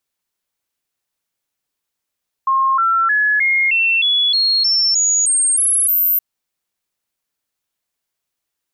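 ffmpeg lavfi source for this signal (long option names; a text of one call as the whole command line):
ffmpeg -f lavfi -i "aevalsrc='0.251*clip(min(mod(t,0.31),0.31-mod(t,0.31))/0.005,0,1)*sin(2*PI*1070*pow(2,floor(t/0.31)/3)*mod(t,0.31))':duration=3.72:sample_rate=44100" out.wav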